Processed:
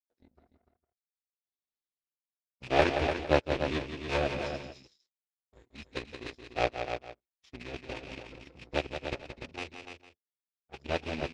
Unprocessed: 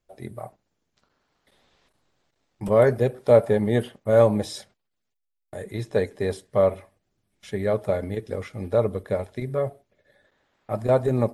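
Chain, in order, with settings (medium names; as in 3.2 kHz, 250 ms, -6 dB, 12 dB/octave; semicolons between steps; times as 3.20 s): rattle on loud lows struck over -29 dBFS, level -19 dBFS; peaking EQ 5 kHz +14.5 dB 1.5 oct; in parallel at -2 dB: compression 5:1, threshold -33 dBFS, peak gain reduction 20 dB; on the sum: formant-preserving pitch shift -8 st; rotary cabinet horn 1 Hz, later 6 Hz, at 3.10 s; power-law waveshaper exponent 2; distance through air 84 m; on a send: multi-tap echo 174/294/455 ms -8/-7.5/-18.5 dB; on the sum: trim -2 dB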